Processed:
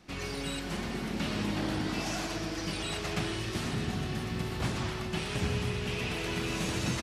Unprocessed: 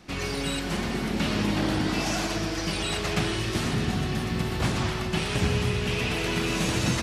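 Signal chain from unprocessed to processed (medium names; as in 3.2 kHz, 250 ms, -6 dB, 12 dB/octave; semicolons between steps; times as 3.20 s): delay 889 ms -15.5 dB; trim -6.5 dB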